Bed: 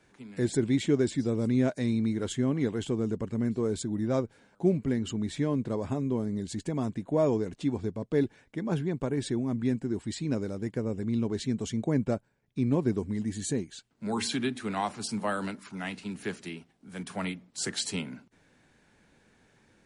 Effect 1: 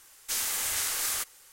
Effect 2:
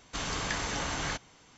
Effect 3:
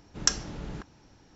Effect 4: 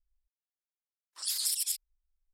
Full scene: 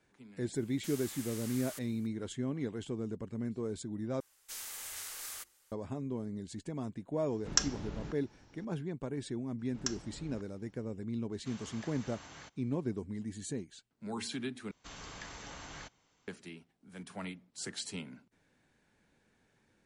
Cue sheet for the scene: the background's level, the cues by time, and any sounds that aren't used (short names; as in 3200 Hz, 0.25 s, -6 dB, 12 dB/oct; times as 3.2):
bed -8.5 dB
0.55 add 1 -7 dB + level quantiser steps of 20 dB
4.2 replace with 1 -13.5 dB + notches 50/100/150/200/250/300/350 Hz
7.3 add 3 -4 dB
9.59 add 3 -12.5 dB
11.32 add 2 -17.5 dB + HPF 68 Hz
14.71 replace with 2 -14 dB
not used: 4